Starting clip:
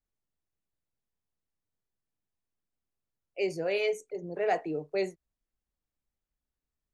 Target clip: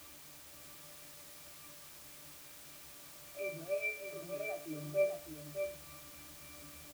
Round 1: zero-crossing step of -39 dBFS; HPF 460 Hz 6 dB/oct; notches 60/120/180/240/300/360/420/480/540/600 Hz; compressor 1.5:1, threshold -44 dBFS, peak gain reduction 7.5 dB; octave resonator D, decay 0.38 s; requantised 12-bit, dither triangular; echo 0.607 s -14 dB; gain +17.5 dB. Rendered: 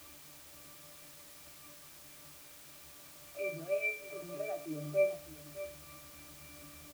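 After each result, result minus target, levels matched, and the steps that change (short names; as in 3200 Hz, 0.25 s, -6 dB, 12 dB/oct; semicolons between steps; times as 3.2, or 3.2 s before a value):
echo-to-direct -7.5 dB; compressor: peak gain reduction -3 dB
change: echo 0.607 s -6.5 dB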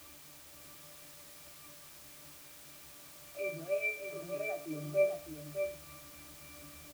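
compressor: peak gain reduction -3 dB
change: compressor 1.5:1, threshold -52.5 dBFS, peak gain reduction 10.5 dB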